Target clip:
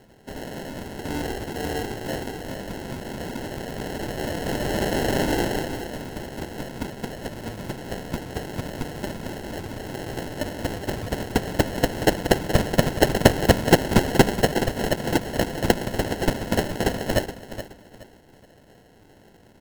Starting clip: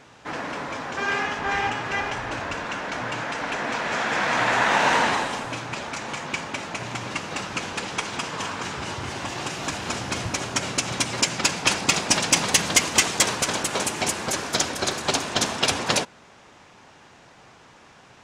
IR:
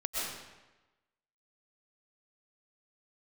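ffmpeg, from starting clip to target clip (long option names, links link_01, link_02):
-filter_complex "[0:a]asetrate=41013,aresample=44100,lowpass=frequency=6500:width_type=q:width=4.6,acrusher=samples=37:mix=1:aa=0.000001,asplit=2[link_01][link_02];[link_02]aecho=0:1:422|844|1266:0.251|0.0703|0.0197[link_03];[link_01][link_03]amix=inputs=2:normalize=0,volume=-4dB"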